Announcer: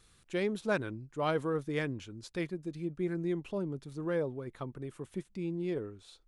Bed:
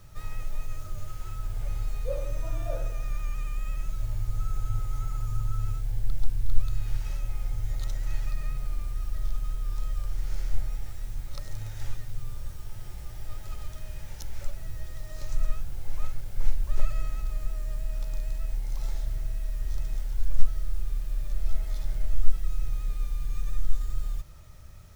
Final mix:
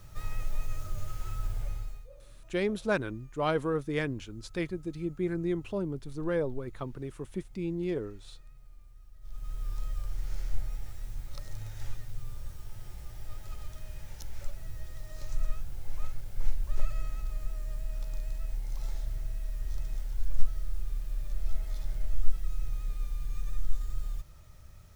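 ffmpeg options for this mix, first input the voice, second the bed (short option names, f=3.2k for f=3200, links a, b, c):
-filter_complex "[0:a]adelay=2200,volume=2.5dB[a];[1:a]volume=18dB,afade=t=out:st=1.45:d=0.63:silence=0.0794328,afade=t=in:st=9.21:d=0.41:silence=0.125893[b];[a][b]amix=inputs=2:normalize=0"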